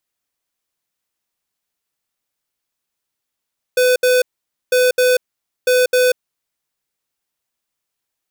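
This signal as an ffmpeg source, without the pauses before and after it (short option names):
-f lavfi -i "aevalsrc='0.224*(2*lt(mod(502*t,1),0.5)-1)*clip(min(mod(mod(t,0.95),0.26),0.19-mod(mod(t,0.95),0.26))/0.005,0,1)*lt(mod(t,0.95),0.52)':d=2.85:s=44100"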